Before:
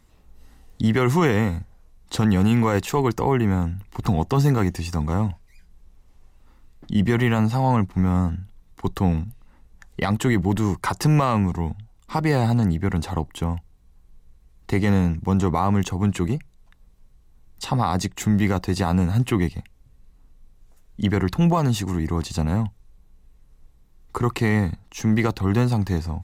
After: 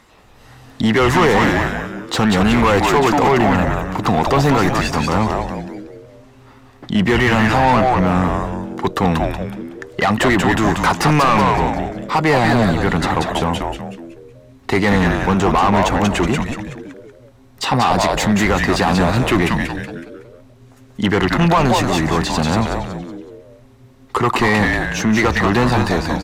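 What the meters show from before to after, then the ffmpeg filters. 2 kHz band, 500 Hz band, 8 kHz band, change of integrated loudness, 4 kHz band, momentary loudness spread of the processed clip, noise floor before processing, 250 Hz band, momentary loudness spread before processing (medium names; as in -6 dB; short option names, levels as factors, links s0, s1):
+13.0 dB, +9.0 dB, +8.0 dB, +6.0 dB, +12.0 dB, 12 LU, -54 dBFS, +5.0 dB, 9 LU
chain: -filter_complex "[0:a]asplit=6[s0][s1][s2][s3][s4][s5];[s1]adelay=186,afreqshift=-140,volume=0.668[s6];[s2]adelay=372,afreqshift=-280,volume=0.248[s7];[s3]adelay=558,afreqshift=-420,volume=0.0912[s8];[s4]adelay=744,afreqshift=-560,volume=0.0339[s9];[s5]adelay=930,afreqshift=-700,volume=0.0126[s10];[s0][s6][s7][s8][s9][s10]amix=inputs=6:normalize=0,asplit=2[s11][s12];[s12]highpass=f=720:p=1,volume=15.8,asoftclip=type=tanh:threshold=0.596[s13];[s11][s13]amix=inputs=2:normalize=0,lowpass=f=2500:p=1,volume=0.501"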